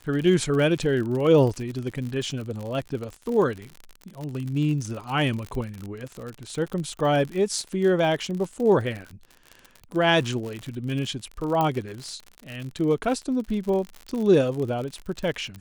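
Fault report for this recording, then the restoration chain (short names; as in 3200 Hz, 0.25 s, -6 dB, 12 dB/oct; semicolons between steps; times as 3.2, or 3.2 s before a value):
crackle 59/s -30 dBFS
11.61 pop -12 dBFS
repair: de-click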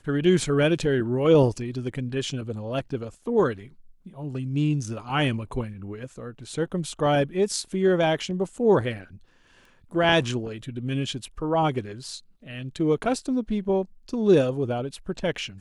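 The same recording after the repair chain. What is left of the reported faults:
none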